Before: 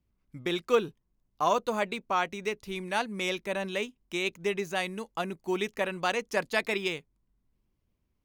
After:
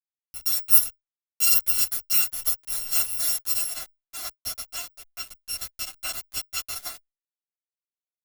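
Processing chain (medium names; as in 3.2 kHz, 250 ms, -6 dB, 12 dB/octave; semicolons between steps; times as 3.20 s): bit-reversed sample order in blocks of 256 samples; treble shelf 7.1 kHz +10 dB, from 3.73 s -3 dB; small samples zeroed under -31 dBFS; endless flanger 9.1 ms -0.45 Hz; trim +2 dB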